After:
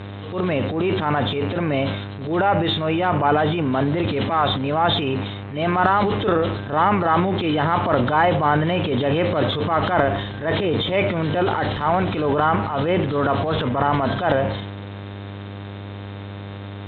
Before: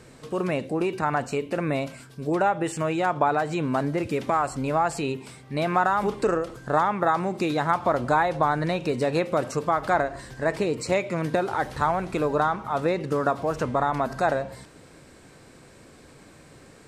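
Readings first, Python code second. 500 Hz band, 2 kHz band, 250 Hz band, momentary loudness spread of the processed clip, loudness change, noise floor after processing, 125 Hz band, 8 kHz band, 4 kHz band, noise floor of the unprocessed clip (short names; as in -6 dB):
+4.0 dB, +4.5 dB, +6.0 dB, 16 LU, +5.0 dB, -33 dBFS, +8.5 dB, under -25 dB, +13.0 dB, -51 dBFS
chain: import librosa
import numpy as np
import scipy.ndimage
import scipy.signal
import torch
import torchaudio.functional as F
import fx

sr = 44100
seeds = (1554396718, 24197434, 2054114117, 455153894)

y = fx.freq_compress(x, sr, knee_hz=2800.0, ratio=4.0)
y = fx.dmg_buzz(y, sr, base_hz=100.0, harmonics=28, level_db=-38.0, tilt_db=-6, odd_only=False)
y = fx.transient(y, sr, attack_db=-10, sustain_db=8)
y = scipy.signal.sosfilt(scipy.signal.butter(2, 47.0, 'highpass', fs=sr, output='sos'), y)
y = y * librosa.db_to_amplitude(5.0)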